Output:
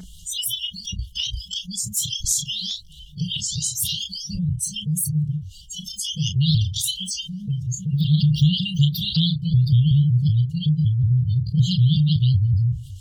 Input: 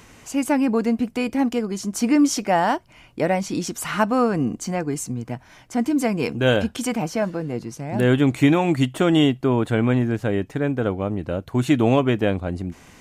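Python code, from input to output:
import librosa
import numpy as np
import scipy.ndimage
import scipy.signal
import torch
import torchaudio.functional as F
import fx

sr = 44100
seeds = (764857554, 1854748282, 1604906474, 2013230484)

y = fx.pitch_ramps(x, sr, semitones=6.0, every_ms=187)
y = fx.brickwall_bandstop(y, sr, low_hz=170.0, high_hz=2800.0)
y = fx.low_shelf(y, sr, hz=200.0, db=10.0)
y = fx.doubler(y, sr, ms=33.0, db=-10.0)
y = fx.env_flanger(y, sr, rest_ms=4.9, full_db=-17.5)
y = fx.noise_reduce_blind(y, sr, reduce_db=24)
y = fx.env_flatten(y, sr, amount_pct=50)
y = y * 10.0 ** (2.0 / 20.0)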